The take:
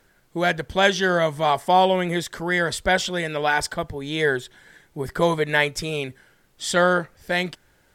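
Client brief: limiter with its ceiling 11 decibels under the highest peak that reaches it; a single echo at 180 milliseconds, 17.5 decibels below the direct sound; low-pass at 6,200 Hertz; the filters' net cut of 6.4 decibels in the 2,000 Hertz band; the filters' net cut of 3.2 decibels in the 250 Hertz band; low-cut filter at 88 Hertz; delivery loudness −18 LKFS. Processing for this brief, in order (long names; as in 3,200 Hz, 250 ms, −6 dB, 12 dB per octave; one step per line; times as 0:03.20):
high-pass filter 88 Hz
low-pass filter 6,200 Hz
parametric band 250 Hz −5.5 dB
parametric band 2,000 Hz −8.5 dB
brickwall limiter −18.5 dBFS
single-tap delay 180 ms −17.5 dB
level +11.5 dB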